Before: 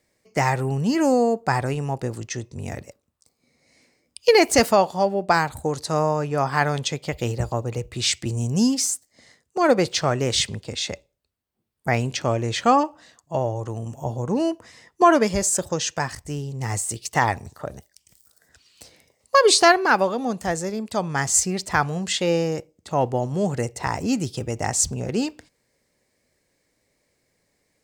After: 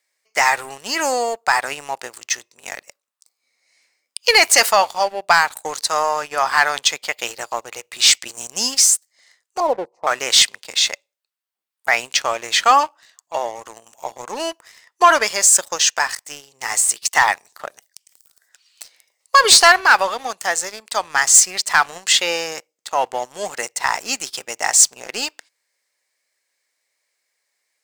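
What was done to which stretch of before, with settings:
9.6–10.07 elliptic low-pass 970 Hz
whole clip: HPF 1100 Hz 12 dB/oct; sample leveller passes 2; gain +3.5 dB

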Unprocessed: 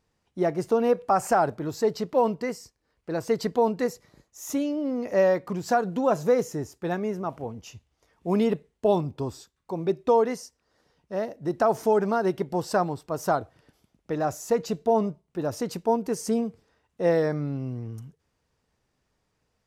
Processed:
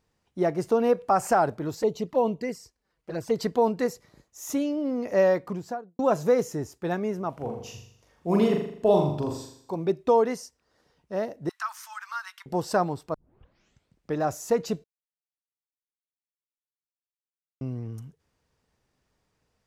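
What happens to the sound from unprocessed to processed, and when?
1.75–3.36 envelope flanger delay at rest 7.1 ms, full sweep at -23 dBFS
5.35–5.99 studio fade out
7.33–9.76 flutter echo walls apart 7 m, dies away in 0.64 s
11.49–12.46 steep high-pass 1100 Hz 48 dB/oct
13.14 tape start 1.02 s
14.84–17.61 mute

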